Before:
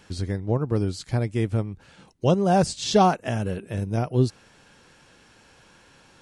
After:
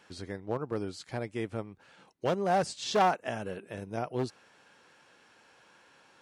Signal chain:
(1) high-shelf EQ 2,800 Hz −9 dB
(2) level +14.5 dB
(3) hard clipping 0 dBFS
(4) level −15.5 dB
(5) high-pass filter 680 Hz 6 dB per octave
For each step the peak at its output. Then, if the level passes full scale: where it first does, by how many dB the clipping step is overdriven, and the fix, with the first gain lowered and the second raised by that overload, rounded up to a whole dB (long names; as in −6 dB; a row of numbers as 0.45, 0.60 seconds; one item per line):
−7.0, +7.5, 0.0, −15.5, −13.0 dBFS
step 2, 7.5 dB
step 2 +6.5 dB, step 4 −7.5 dB